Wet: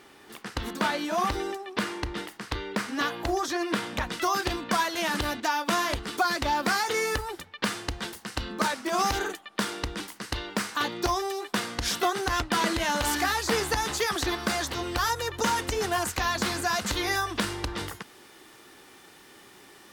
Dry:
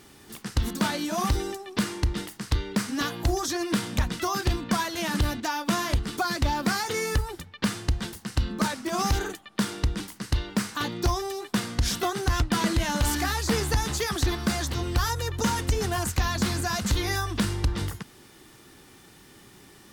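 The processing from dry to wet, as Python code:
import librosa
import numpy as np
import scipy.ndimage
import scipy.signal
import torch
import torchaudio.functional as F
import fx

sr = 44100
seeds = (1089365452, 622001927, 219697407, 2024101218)

y = fx.bass_treble(x, sr, bass_db=-14, treble_db=fx.steps((0.0, -10.0), (4.07, -4.0)))
y = F.gain(torch.from_numpy(y), 3.0).numpy()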